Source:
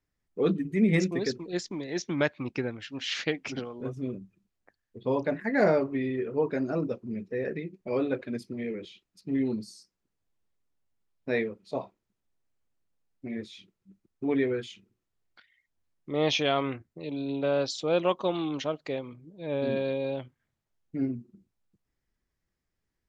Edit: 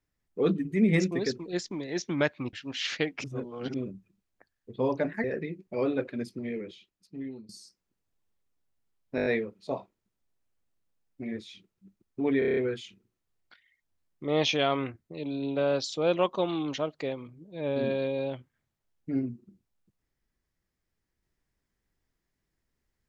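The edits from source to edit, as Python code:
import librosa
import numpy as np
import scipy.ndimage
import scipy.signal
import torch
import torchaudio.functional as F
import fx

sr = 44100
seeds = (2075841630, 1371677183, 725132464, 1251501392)

y = fx.edit(x, sr, fx.cut(start_s=2.53, length_s=0.27),
    fx.reverse_span(start_s=3.51, length_s=0.5),
    fx.cut(start_s=5.51, length_s=1.87),
    fx.fade_out_to(start_s=8.57, length_s=1.06, floor_db=-20.5),
    fx.stutter(start_s=11.3, slice_s=0.02, count=6),
    fx.stutter(start_s=14.43, slice_s=0.03, count=7), tone=tone)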